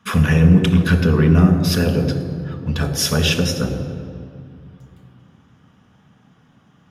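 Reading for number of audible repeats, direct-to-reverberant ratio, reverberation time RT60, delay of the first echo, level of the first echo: no echo audible, 4.0 dB, 2.3 s, no echo audible, no echo audible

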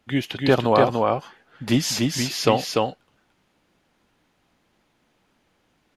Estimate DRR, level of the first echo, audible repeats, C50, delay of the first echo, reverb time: no reverb audible, −3.0 dB, 1, no reverb audible, 293 ms, no reverb audible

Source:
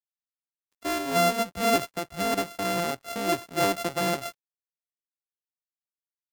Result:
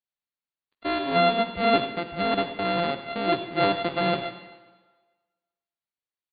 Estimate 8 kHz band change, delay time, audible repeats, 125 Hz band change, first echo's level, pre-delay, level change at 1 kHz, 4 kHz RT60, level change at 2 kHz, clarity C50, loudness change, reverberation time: below −40 dB, 94 ms, 1, +2.0 dB, −15.0 dB, 40 ms, +2.5 dB, 1.3 s, +2.0 dB, 9.0 dB, +2.0 dB, 1.4 s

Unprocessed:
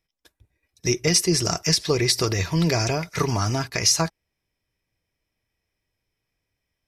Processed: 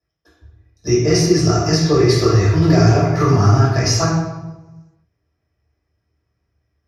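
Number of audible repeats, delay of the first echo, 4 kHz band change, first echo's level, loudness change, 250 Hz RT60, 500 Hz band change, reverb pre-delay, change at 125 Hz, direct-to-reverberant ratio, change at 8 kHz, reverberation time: no echo audible, no echo audible, 0.0 dB, no echo audible, +7.0 dB, 1.4 s, +9.5 dB, 3 ms, +11.5 dB, −10.5 dB, −1.5 dB, 1.1 s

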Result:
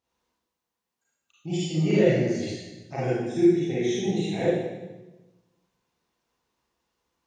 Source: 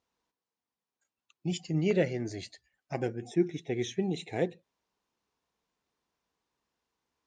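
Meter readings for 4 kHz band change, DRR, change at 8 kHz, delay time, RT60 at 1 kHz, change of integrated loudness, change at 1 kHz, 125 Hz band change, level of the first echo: +6.0 dB, −9.0 dB, +6.0 dB, no echo audible, 1.0 s, +7.5 dB, +6.0 dB, +7.0 dB, no echo audible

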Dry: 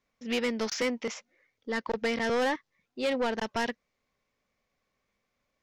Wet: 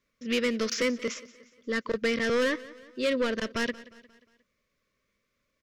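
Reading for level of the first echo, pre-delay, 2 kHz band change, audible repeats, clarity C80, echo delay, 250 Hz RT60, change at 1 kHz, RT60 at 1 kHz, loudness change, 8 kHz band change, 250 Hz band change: −19.5 dB, no reverb audible, +2.5 dB, 3, no reverb audible, 178 ms, no reverb audible, −5.0 dB, no reverb audible, +2.0 dB, +2.5 dB, +2.5 dB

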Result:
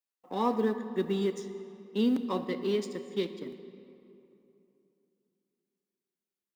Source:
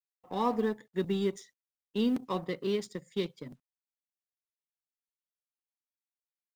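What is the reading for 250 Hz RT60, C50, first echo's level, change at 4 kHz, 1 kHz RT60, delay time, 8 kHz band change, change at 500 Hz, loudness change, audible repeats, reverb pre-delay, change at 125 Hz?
3.2 s, 10.5 dB, no echo audible, +0.5 dB, 2.9 s, no echo audible, 0.0 dB, +2.0 dB, +1.5 dB, no echo audible, 13 ms, −0.5 dB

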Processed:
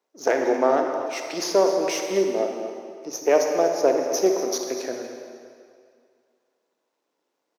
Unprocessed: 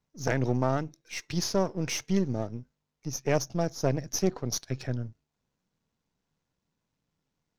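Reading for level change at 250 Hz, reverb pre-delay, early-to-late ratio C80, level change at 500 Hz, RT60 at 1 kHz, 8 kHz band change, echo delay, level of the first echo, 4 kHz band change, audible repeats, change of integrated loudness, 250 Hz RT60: +2.5 dB, 30 ms, 4.5 dB, +11.0 dB, 2.2 s, +3.5 dB, 242 ms, −13.5 dB, +4.0 dB, 1, +7.5 dB, 2.1 s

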